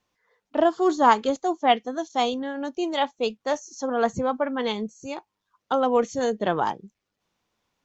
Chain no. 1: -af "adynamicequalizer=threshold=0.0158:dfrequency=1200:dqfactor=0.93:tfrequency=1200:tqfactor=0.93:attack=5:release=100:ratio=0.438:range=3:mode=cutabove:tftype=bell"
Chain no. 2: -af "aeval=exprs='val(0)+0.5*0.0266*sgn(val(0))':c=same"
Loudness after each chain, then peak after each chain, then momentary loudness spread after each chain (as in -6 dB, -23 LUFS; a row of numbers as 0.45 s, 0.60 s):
-26.0 LUFS, -23.5 LUFS; -7.0 dBFS, -4.5 dBFS; 10 LU, 16 LU